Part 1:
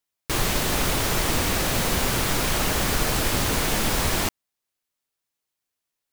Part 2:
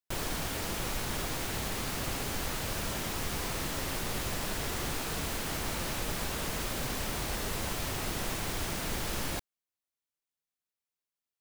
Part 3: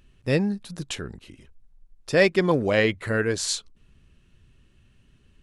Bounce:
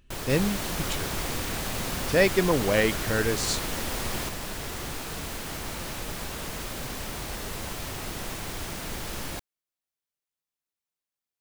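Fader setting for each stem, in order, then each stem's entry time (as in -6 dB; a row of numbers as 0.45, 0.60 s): -10.0, -0.5, -2.5 dB; 0.00, 0.00, 0.00 s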